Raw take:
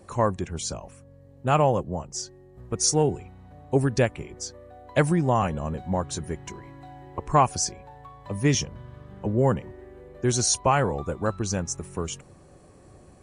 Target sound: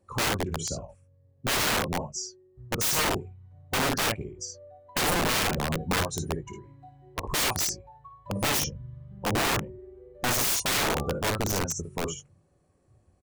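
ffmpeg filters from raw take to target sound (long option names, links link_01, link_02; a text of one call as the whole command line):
ffmpeg -i in.wav -af "afftdn=noise_reduction=18:noise_floor=-33,aecho=1:1:24|56|75:0.178|0.501|0.237,aeval=exprs='(mod(10.6*val(0)+1,2)-1)/10.6':channel_layout=same" out.wav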